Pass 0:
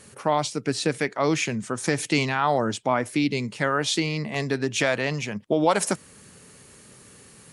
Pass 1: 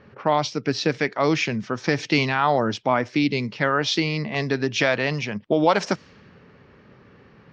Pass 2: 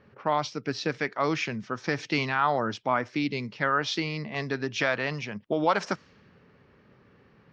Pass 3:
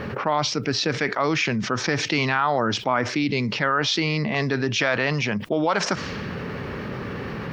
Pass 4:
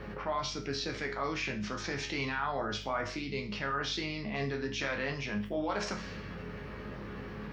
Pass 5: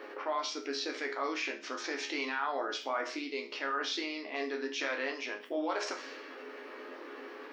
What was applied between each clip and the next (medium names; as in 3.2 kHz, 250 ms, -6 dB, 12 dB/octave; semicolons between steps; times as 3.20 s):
elliptic low-pass 5.6 kHz, stop band 60 dB; level-controlled noise filter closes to 1.7 kHz, open at -22.5 dBFS; trim +3 dB
dynamic bell 1.3 kHz, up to +6 dB, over -35 dBFS, Q 1.4; trim -7.5 dB
level flattener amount 70%
chord resonator C#2 major, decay 0.37 s; hum 50 Hz, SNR 13 dB
brick-wall FIR high-pass 250 Hz